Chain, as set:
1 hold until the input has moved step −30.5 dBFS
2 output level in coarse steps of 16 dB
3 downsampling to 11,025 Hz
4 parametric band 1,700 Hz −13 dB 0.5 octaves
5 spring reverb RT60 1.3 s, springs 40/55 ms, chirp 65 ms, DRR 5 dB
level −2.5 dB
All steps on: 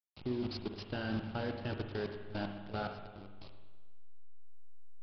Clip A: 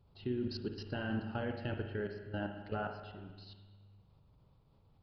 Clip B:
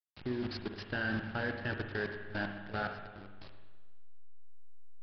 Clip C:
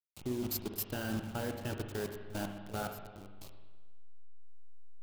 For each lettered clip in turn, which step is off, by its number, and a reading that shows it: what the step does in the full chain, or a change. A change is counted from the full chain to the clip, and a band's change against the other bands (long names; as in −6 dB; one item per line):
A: 1, distortion level −5 dB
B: 4, 2 kHz band +9.5 dB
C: 3, change in crest factor +2.0 dB